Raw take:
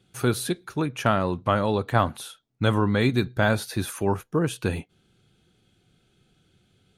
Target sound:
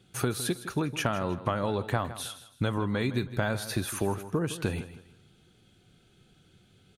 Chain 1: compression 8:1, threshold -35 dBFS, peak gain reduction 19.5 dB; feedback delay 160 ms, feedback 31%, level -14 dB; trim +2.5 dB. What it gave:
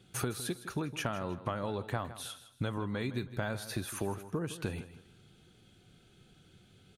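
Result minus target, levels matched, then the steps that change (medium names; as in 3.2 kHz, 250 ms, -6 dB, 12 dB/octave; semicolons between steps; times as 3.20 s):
compression: peak gain reduction +6.5 dB
change: compression 8:1, threshold -27.5 dBFS, peak gain reduction 13 dB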